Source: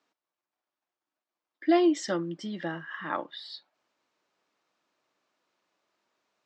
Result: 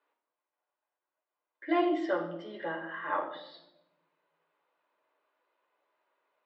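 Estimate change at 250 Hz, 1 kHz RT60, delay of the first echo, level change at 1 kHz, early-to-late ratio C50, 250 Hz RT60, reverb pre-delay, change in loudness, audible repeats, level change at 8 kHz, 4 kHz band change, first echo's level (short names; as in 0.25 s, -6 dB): -6.0 dB, 0.75 s, none, 0.0 dB, 8.0 dB, 1.5 s, 7 ms, -4.0 dB, none, n/a, -7.5 dB, none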